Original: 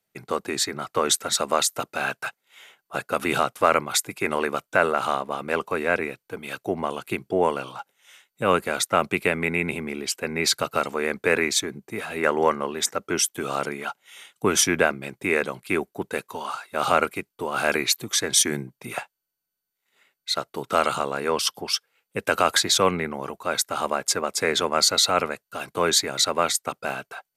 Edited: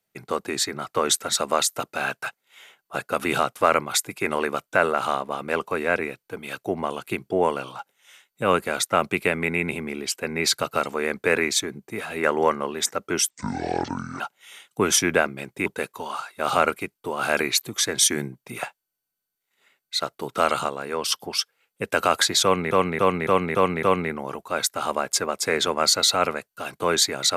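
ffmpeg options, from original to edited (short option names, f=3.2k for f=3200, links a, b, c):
-filter_complex "[0:a]asplit=11[a][b][c][d][e][f][g][h][i][j][k];[a]atrim=end=13.304[l];[b]atrim=start=13.3:end=13.85,asetpts=PTS-STARTPTS,asetrate=26901,aresample=44100,atrim=end_sample=39762,asetpts=PTS-STARTPTS[m];[c]atrim=start=13.846:end=15.312[n];[d]atrim=start=16.008:end=21.042[o];[e]atrim=start=21.038:end=21.402,asetpts=PTS-STARTPTS,volume=-4dB[p];[f]atrim=start=21.398:end=23.062[q];[g]atrim=start=22.778:end=23.062[r];[h]atrim=start=22.778:end=23.062[s];[i]atrim=start=22.778:end=23.062[t];[j]atrim=start=22.778:end=23.062[u];[k]atrim=start=22.778[v];[l][m]acrossfade=d=0.004:c1=hsin:c2=hsin[w];[w][n]acrossfade=d=0.004:c1=hsin:c2=hsin[x];[x][o]acrossfade=d=0.004:c1=hsin:c2=hsin[y];[y][p]acrossfade=d=0.004:c1=hsin:c2=hsin[z];[z][q]acrossfade=d=0.004:c1=hsin:c2=hsin[aa];[aa][r]acrossfade=d=0.004:c1=hsin:c2=hsin[ab];[ab][s]acrossfade=d=0.004:c1=hsin:c2=hsin[ac];[ac][t]acrossfade=d=0.004:c1=hsin:c2=hsin[ad];[ad][u]acrossfade=d=0.004:c1=hsin:c2=hsin[ae];[ae][v]acrossfade=d=0.004:c1=hsin:c2=hsin"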